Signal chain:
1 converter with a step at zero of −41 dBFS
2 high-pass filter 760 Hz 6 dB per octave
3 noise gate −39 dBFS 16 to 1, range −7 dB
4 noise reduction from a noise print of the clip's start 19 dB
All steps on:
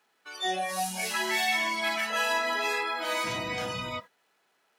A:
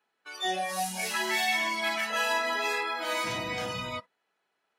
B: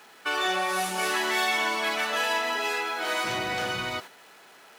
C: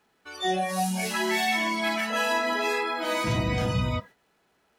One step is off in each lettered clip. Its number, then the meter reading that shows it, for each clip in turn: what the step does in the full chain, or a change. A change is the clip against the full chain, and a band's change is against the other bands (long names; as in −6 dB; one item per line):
1, distortion level −24 dB
4, 125 Hz band −2.5 dB
2, 125 Hz band +14.0 dB